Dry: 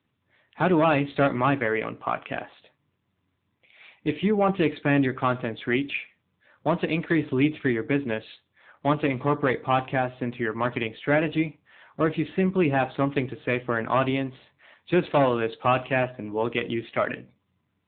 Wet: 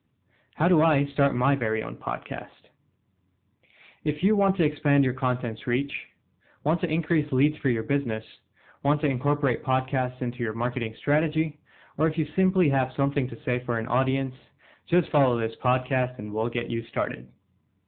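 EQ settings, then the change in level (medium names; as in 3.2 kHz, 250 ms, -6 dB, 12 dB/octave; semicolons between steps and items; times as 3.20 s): dynamic bell 280 Hz, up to -4 dB, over -35 dBFS, Q 0.83; bass shelf 480 Hz +9.5 dB; -3.5 dB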